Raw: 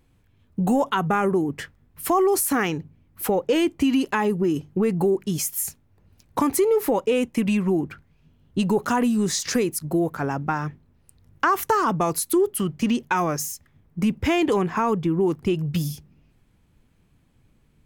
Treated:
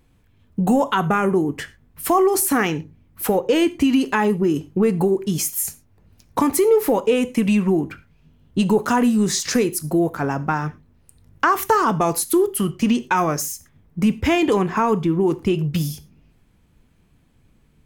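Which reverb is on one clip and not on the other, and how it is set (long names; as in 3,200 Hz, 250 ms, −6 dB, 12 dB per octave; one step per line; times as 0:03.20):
reverb whose tail is shaped and stops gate 140 ms falling, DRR 12 dB
level +3 dB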